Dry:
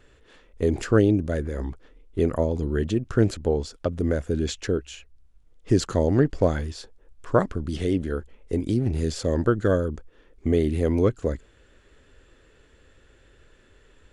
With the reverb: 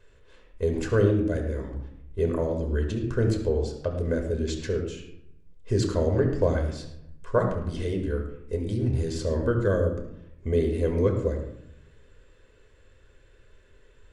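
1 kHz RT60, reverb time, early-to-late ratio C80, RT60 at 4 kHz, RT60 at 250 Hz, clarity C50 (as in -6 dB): 0.75 s, 0.80 s, 8.0 dB, 0.45 s, 1.0 s, 6.0 dB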